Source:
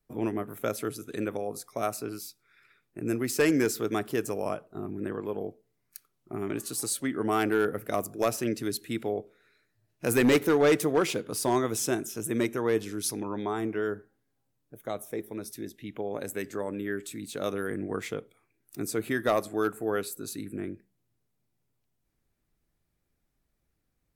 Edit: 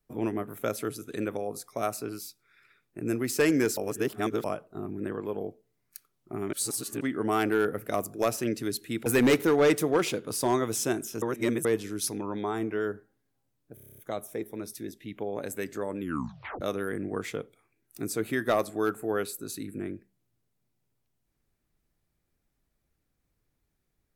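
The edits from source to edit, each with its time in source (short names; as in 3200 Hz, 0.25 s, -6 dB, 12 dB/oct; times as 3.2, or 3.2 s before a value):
3.77–4.44 reverse
6.53–7.01 reverse
9.06–10.08 cut
12.24–12.67 reverse
14.76 stutter 0.03 s, 9 plays
16.78 tape stop 0.61 s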